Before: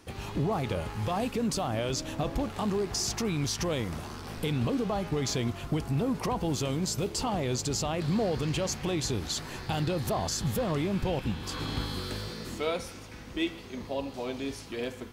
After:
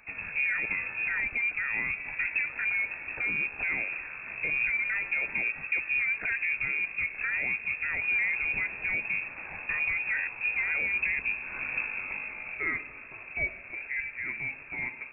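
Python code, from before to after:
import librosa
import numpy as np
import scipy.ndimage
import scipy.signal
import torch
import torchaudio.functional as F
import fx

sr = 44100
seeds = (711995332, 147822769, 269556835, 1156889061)

y = fx.freq_invert(x, sr, carrier_hz=2600)
y = fx.dynamic_eq(y, sr, hz=1200.0, q=2.3, threshold_db=-48.0, ratio=4.0, max_db=-4)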